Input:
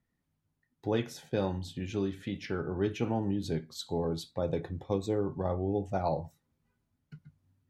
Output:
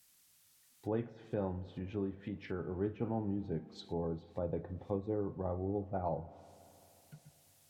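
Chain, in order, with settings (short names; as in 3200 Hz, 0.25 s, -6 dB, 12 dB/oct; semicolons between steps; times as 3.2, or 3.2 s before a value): spring tank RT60 3.4 s, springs 35/53 ms, chirp 60 ms, DRR 16.5 dB; added noise blue -58 dBFS; treble ducked by the level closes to 1300 Hz, closed at -31 dBFS; gain -5.5 dB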